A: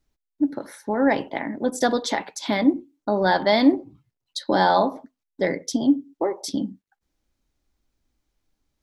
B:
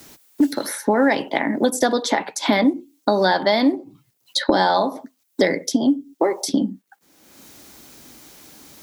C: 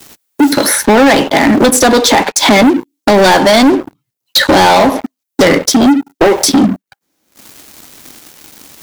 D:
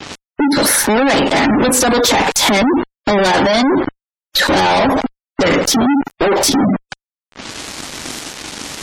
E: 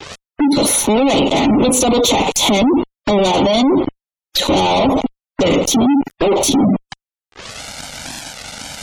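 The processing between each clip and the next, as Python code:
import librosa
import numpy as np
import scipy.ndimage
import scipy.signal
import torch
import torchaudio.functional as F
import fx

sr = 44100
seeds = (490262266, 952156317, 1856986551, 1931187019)

y1 = scipy.signal.sosfilt(scipy.signal.butter(2, 170.0, 'highpass', fs=sr, output='sos'), x)
y1 = fx.high_shelf(y1, sr, hz=7800.0, db=10.5)
y1 = fx.band_squash(y1, sr, depth_pct=100)
y1 = y1 * librosa.db_to_amplitude(2.5)
y2 = fx.leveller(y1, sr, passes=5)
y3 = fx.fuzz(y2, sr, gain_db=36.0, gate_db=-34.0)
y3 = fx.env_lowpass(y3, sr, base_hz=2800.0, full_db=-17.0)
y3 = fx.spec_gate(y3, sr, threshold_db=-25, keep='strong')
y3 = y3 * librosa.db_to_amplitude(2.0)
y4 = fx.env_flanger(y3, sr, rest_ms=2.7, full_db=-13.0)
y4 = y4 * librosa.db_to_amplitude(1.0)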